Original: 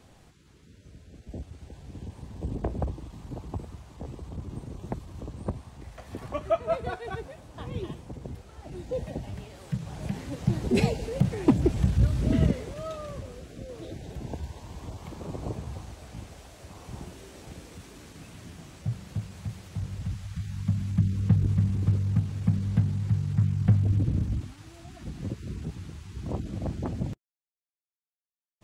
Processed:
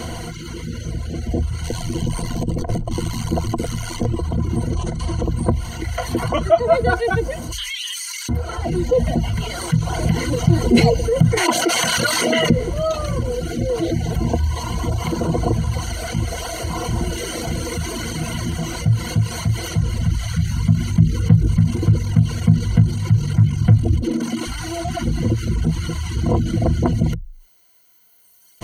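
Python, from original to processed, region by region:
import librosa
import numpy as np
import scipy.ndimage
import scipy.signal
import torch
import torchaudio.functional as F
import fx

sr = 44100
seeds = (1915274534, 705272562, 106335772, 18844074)

y = fx.chain(x, sr, fx.high_shelf(hz=2300.0, db=8.0),
    fx.over_compress(threshold_db=-34.0, ratio=-0.5),
    fx.ring_mod(carrier_hz=43.0), at=(1.64, 4.06))
y = fx.chain(y, sr, fx.over_compress(threshold_db=-41.0, ratio=-1.0),
    fx.doubler(ms=43.0, db=-9.0),
    fx.resample_bad(factor=2, down='none', up='filtered'), at=(4.73, 5.23))
y = fx.chain(y, sr, fx.bessel_highpass(hz=2700.0, order=6),
    fx.comb(ms=5.0, depth=0.39),
    fx.env_flatten(amount_pct=70), at=(7.52, 8.29))
y = fx.chain(y, sr, fx.highpass(hz=780.0, slope=12),
    fx.env_flatten(amount_pct=70), at=(11.37, 12.5))
y = fx.chain(y, sr, fx.highpass(hz=230.0, slope=24),
    fx.over_compress(threshold_db=-37.0, ratio=-0.5), at=(23.97, 24.47))
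y = fx.dereverb_blind(y, sr, rt60_s=1.8)
y = fx.ripple_eq(y, sr, per_octave=1.9, db=14)
y = fx.env_flatten(y, sr, amount_pct=50)
y = y * 10.0 ** (5.5 / 20.0)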